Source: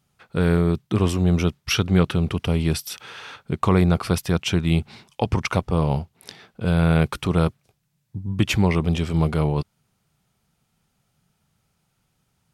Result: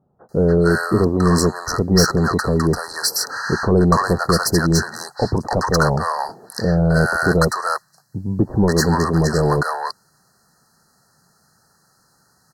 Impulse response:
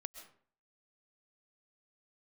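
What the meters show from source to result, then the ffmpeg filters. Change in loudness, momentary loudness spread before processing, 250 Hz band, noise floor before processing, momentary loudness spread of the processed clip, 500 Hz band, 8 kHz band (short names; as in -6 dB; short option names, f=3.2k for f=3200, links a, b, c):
+4.0 dB, 12 LU, +3.5 dB, -72 dBFS, 9 LU, +7.0 dB, +11.0 dB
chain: -filter_complex "[0:a]asplit=2[a][b];[b]highpass=f=720:p=1,volume=21dB,asoftclip=type=tanh:threshold=-6.5dB[c];[a][c]amix=inputs=2:normalize=0,lowpass=f=6k:p=1,volume=-6dB,afftfilt=real='re*(1-between(b*sr/4096,1900,4000))':imag='im*(1-between(b*sr/4096,1900,4000))':win_size=4096:overlap=0.75,acrossover=split=730[d][e];[e]adelay=290[f];[d][f]amix=inputs=2:normalize=0,volume=2.5dB"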